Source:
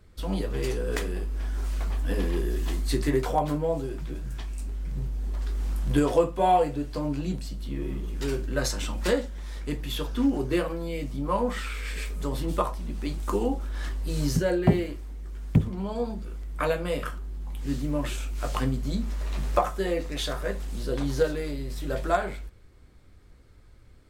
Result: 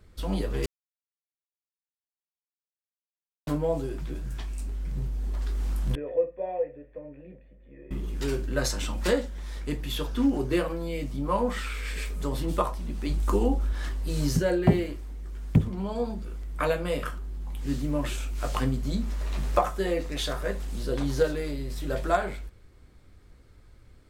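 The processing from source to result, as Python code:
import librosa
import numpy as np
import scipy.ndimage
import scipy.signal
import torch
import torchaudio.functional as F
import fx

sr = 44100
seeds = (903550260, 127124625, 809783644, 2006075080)

y = fx.formant_cascade(x, sr, vowel='e', at=(5.95, 7.91))
y = fx.low_shelf(y, sr, hz=150.0, db=6.5, at=(13.09, 13.73))
y = fx.edit(y, sr, fx.silence(start_s=0.66, length_s=2.81), tone=tone)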